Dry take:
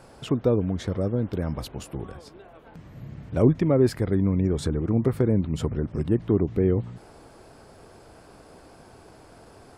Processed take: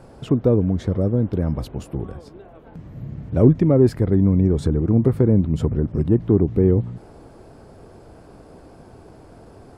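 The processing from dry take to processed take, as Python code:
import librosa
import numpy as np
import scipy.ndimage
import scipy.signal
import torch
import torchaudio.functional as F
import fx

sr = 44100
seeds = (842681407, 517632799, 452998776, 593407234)

p1 = 10.0 ** (-20.0 / 20.0) * np.tanh(x / 10.0 ** (-20.0 / 20.0))
p2 = x + (p1 * librosa.db_to_amplitude(-12.0))
y = fx.tilt_shelf(p2, sr, db=5.5, hz=810.0)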